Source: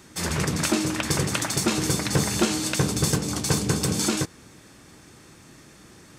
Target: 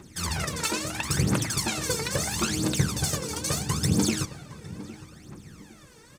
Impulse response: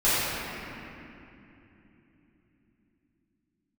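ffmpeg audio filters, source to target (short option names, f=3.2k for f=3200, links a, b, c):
-filter_complex "[0:a]asplit=2[a][b];[1:a]atrim=start_sample=2205[c];[b][c]afir=irnorm=-1:irlink=0,volume=-32dB[d];[a][d]amix=inputs=2:normalize=0,aphaser=in_gain=1:out_gain=1:delay=2.3:decay=0.77:speed=0.75:type=triangular,asplit=2[e][f];[f]adelay=810,lowpass=f=1.8k:p=1,volume=-15.5dB,asplit=2[g][h];[h]adelay=810,lowpass=f=1.8k:p=1,volume=0.34,asplit=2[i][j];[j]adelay=810,lowpass=f=1.8k:p=1,volume=0.34[k];[e][g][i][k]amix=inputs=4:normalize=0,volume=-6.5dB"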